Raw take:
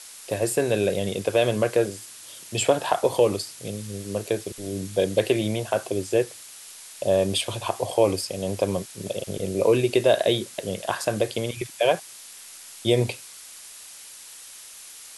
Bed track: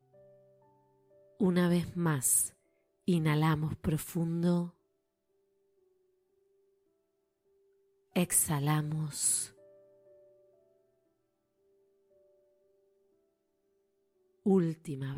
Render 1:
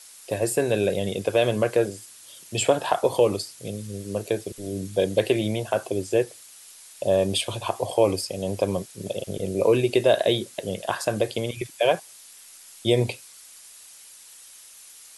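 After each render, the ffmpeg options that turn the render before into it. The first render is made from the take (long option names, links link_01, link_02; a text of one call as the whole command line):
ffmpeg -i in.wav -af "afftdn=noise_reduction=6:noise_floor=-44" out.wav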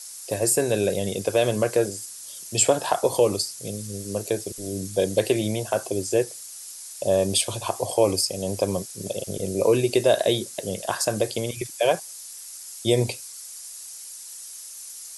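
ffmpeg -i in.wav -af "highshelf=frequency=4200:width_type=q:width=1.5:gain=7" out.wav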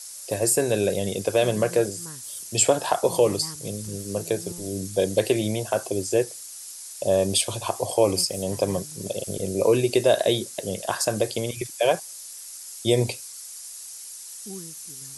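ffmpeg -i in.wav -i bed.wav -filter_complex "[1:a]volume=-13dB[link_01];[0:a][link_01]amix=inputs=2:normalize=0" out.wav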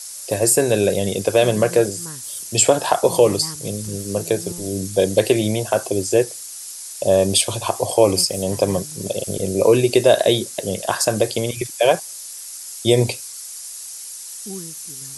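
ffmpeg -i in.wav -af "volume=5.5dB,alimiter=limit=-2dB:level=0:latency=1" out.wav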